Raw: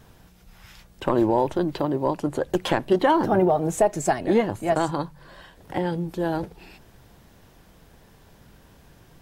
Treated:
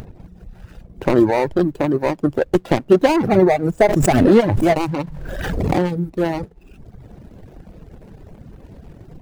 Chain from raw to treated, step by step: median filter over 41 samples; upward compressor, threshold -36 dBFS; reverb removal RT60 0.98 s; 3.82–5.94 backwards sustainer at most 24 dB/s; gain +8.5 dB

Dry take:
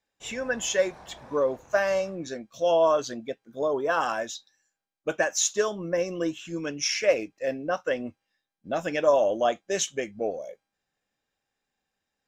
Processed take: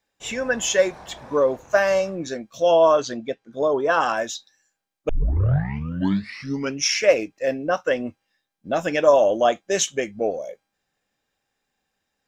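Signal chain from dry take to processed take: 2.62–4.17 LPF 6800 Hz 12 dB/oct; 5.09 tape start 1.73 s; gain +5.5 dB

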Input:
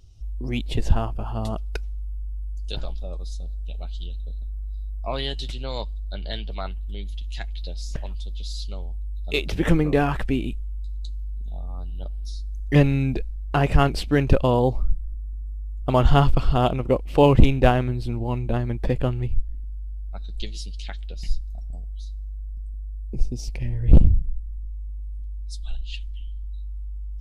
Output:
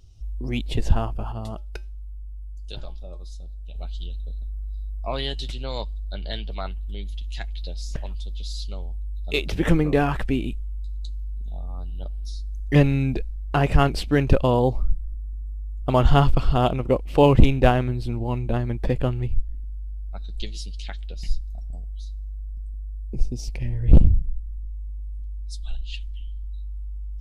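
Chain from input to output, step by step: 1.32–3.76 resonator 120 Hz, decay 0.25 s, harmonics odd, mix 50%

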